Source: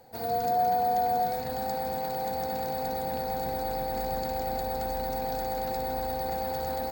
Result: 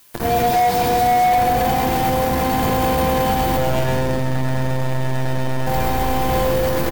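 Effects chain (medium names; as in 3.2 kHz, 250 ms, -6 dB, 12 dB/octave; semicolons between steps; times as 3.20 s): 3.57–5.67 s: monotone LPC vocoder at 8 kHz 130 Hz; speakerphone echo 270 ms, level -10 dB; bit crusher 5-bit; added noise blue -55 dBFS; treble shelf 2.4 kHz -8 dB; feedback comb 340 Hz, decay 0.44 s, harmonics odd, mix 80%; two-band feedback delay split 440 Hz, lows 621 ms, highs 133 ms, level -3.5 dB; hard clipper -36.5 dBFS, distortion -14 dB; bass shelf 260 Hz +10.5 dB; loudness maximiser +34.5 dB; trim -9 dB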